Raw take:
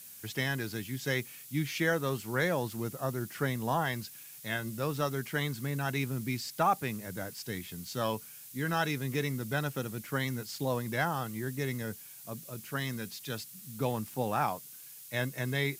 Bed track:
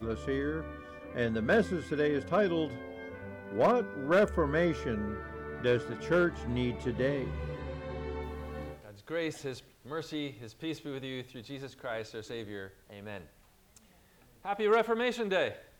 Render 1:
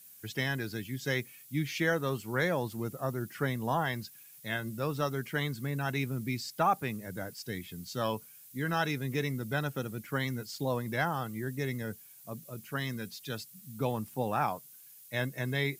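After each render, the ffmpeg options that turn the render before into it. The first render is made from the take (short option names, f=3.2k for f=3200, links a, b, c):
-af "afftdn=nr=8:nf=-50"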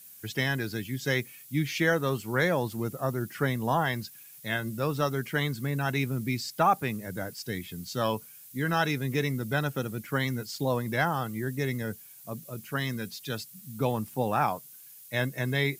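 -af "volume=4dB"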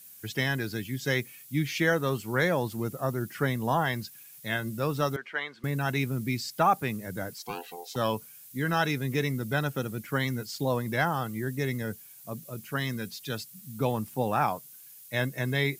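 -filter_complex "[0:a]asettb=1/sr,asplit=3[a][b][c];[a]atrim=end=5.164[d];[b]atrim=start=5.16:end=5.64,asetpts=PTS-STARTPTS,afade=t=in:d=0.004:c=qsin,afade=t=out:st=0.476:d=0.004:c=qsin,highpass=670,lowpass=2.7k[e];[c]atrim=start=5.636[f];[d][e]acrossfade=d=0.004:c1=hsin:c2=qsin[g];[g][f]acrossfade=d=0.004:c1=qsin:c2=hsin,asettb=1/sr,asplit=3[h][i][j];[h]atrim=end=7.384[k];[i]atrim=start=7.38:end=7.96,asetpts=PTS-STARTPTS,afade=t=in:d=0.004:c=qsin,afade=t=out:st=0.576:d=0.004:c=qsin,aeval=exprs='val(0)*sin(2*PI*610*n/s)':c=same[l];[j]atrim=start=7.956[m];[k][l]acrossfade=d=0.004:c1=hsin:c2=qsin[n];[n][m]acrossfade=d=0.004:c1=qsin:c2=hsin"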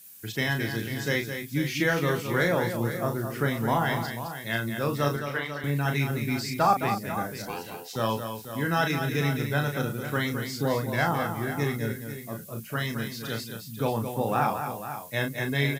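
-filter_complex "[0:a]asplit=2[a][b];[b]adelay=35,volume=-5.5dB[c];[a][c]amix=inputs=2:normalize=0,aecho=1:1:214|492:0.398|0.282"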